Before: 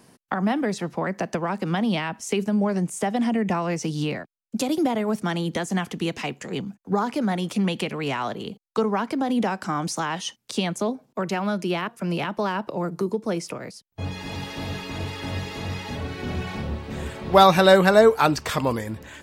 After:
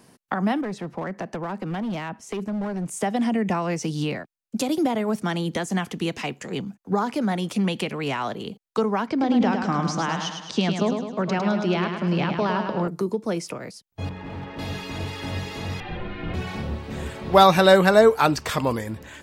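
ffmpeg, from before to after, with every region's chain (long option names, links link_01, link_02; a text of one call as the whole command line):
ffmpeg -i in.wav -filter_complex "[0:a]asettb=1/sr,asplit=3[link_01][link_02][link_03];[link_01]atrim=end=0.614[link_04];[link_02]atrim=start=0.61:end=2.86,asetpts=PTS-STARTPTS,afade=type=in:duration=0.004:curve=qsin,afade=type=out:start_time=2.246:duration=0.004:curve=qsin,highshelf=frequency=3100:gain=-11,volume=21dB,asoftclip=hard,volume=-21dB,acompressor=threshold=-27dB:ratio=2.5:attack=3.2:release=140:knee=1:detection=peak[link_05];[link_03]atrim=start=2.856[link_06];[link_04][link_05]acrossfade=duration=0.004:curve1=hsin:curve2=qsin[link_07];[link_07][link_06]acrossfade=duration=0.004:curve1=qsin:curve2=hsin,asettb=1/sr,asplit=3[link_08][link_09][link_10];[link_08]atrim=end=9.074[link_11];[link_09]atrim=start=9.07:end=12.88,asetpts=PTS-STARTPTS,afade=type=in:duration=0.004:curve=qsin,afade=type=out:start_time=3.806:duration=0.004:curve=qsin,lowpass=frequency=6200:width=0.5412,lowpass=frequency=6200:width=1.3066,lowshelf=frequency=230:gain=5.5,aecho=1:1:105|210|315|420|525|630|735:0.501|0.266|0.141|0.0746|0.0395|0.021|0.0111,atrim=end_sample=168021[link_12];[link_10]atrim=start=12.876[link_13];[link_11][link_12]acrossfade=duration=0.004:curve1=hsin:curve2=qsin[link_14];[link_14][link_13]acrossfade=duration=0.004:curve1=qsin:curve2=hsin,asettb=1/sr,asplit=3[link_15][link_16][link_17];[link_15]atrim=end=14.094[link_18];[link_16]atrim=start=14.09:end=14.59,asetpts=PTS-STARTPTS,afade=type=in:duration=0.004:curve=qsin,afade=type=out:start_time=0.496:duration=0.004:curve=qsin,lowpass=1700,asoftclip=type=hard:threshold=-30dB[link_19];[link_17]atrim=start=14.586[link_20];[link_18][link_19]acrossfade=duration=0.004:curve1=hsin:curve2=qsin[link_21];[link_21][link_20]acrossfade=duration=0.004:curve1=qsin:curve2=hsin,asettb=1/sr,asplit=3[link_22][link_23][link_24];[link_22]atrim=end=15.804[link_25];[link_23]atrim=start=15.8:end=16.34,asetpts=PTS-STARTPTS,afade=type=in:duration=0.004:curve=qsin,afade=type=out:start_time=0.536:duration=0.004:curve=qsin,lowpass=frequency=3300:width=0.5412,lowpass=frequency=3300:width=1.3066,afreqshift=-77[link_26];[link_24]atrim=start=16.336[link_27];[link_25][link_26]acrossfade=duration=0.004:curve1=hsin:curve2=qsin[link_28];[link_28][link_27]acrossfade=duration=0.004:curve1=qsin:curve2=hsin" out.wav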